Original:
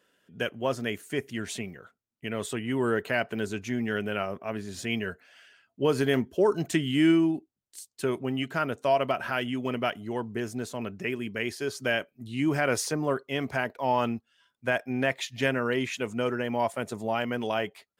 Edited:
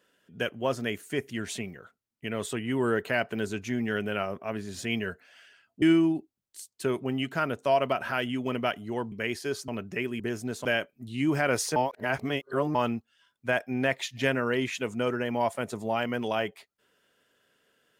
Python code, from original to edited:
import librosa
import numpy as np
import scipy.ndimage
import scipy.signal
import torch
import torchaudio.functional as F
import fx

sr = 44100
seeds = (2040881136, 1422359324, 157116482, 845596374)

y = fx.edit(x, sr, fx.cut(start_s=5.82, length_s=1.19),
    fx.swap(start_s=10.31, length_s=0.45, other_s=11.28, other_length_s=0.56),
    fx.reverse_span(start_s=12.95, length_s=0.99), tone=tone)